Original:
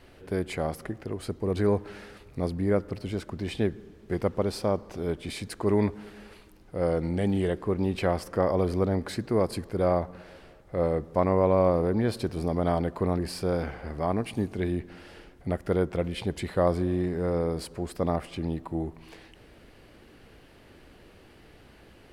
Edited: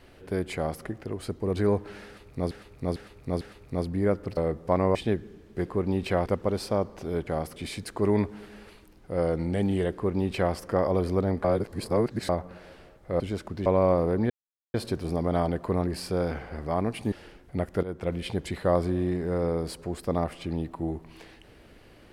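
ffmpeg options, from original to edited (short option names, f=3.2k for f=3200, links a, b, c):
-filter_complex "[0:a]asplit=17[a][b][c][d][e][f][g][h][i][j][k][l][m][n][o][p][q];[a]atrim=end=2.512[r];[b]atrim=start=2.058:end=2.512[s];[c]atrim=start=2.058:end=2.512[t];[d]atrim=start=2.058:end=3.022[u];[e]atrim=start=10.838:end=11.422[v];[f]atrim=start=3.478:end=4.192[w];[g]atrim=start=7.578:end=8.182[x];[h]atrim=start=4.188:end=5.202[y];[i]atrim=start=0.548:end=0.842[z];[j]atrim=start=5.198:end=9.082[aa];[k]atrim=start=9.078:end=9.932,asetpts=PTS-STARTPTS,areverse[ab];[l]atrim=start=9.928:end=10.842[ac];[m]atrim=start=3.018:end=3.482[ad];[n]atrim=start=11.418:end=12.06,asetpts=PTS-STARTPTS,afade=t=out:st=0.638:d=0.004:c=hsin,apad=pad_dur=0.44[ae];[o]atrim=start=12.06:end=14.442,asetpts=PTS-STARTPTS,afade=t=in:d=0.004:c=hsin[af];[p]atrim=start=15.038:end=15.75,asetpts=PTS-STARTPTS,afade=t=out:st=0.708:d=0.004:c=hsin:silence=0.16788[ag];[q]atrim=start=15.75,asetpts=PTS-STARTPTS,afade=t=in:d=0.3:silence=0.16788[ah];[r][s]acrossfade=d=0.004:c1=hsin:c2=hsin[ai];[ai][t]acrossfade=d=0.004:c1=hsin:c2=hsin[aj];[aj][u]acrossfade=d=0.004:c1=hsin:c2=hsin[ak];[ak][v]acrossfade=d=0.004:c1=hsin:c2=hsin[al];[al][w]acrossfade=d=0.004:c1=hsin:c2=hsin[am];[am][x]acrossfade=d=0.004:c1=hsin:c2=hsin[an];[an][y]acrossfade=d=0.004:c1=hsin:c2=hsin[ao];[ao][z]acrossfade=d=0.004:c1=hsin:c2=hsin[ap];[ap][aa]acrossfade=d=0.004:c1=hsin:c2=hsin[aq];[aq][ab]acrossfade=d=0.004:c1=hsin:c2=hsin[ar];[ar][ac]acrossfade=d=0.004:c1=hsin:c2=hsin[as];[as][ad]acrossfade=d=0.004:c1=hsin:c2=hsin[at];[ae][af]concat=n=2:v=0:a=1[au];[at][au]acrossfade=d=0.004:c1=hsin:c2=hsin[av];[ag][ah]concat=n=2:v=0:a=1[aw];[av][aw]acrossfade=d=0.004:c1=hsin:c2=hsin"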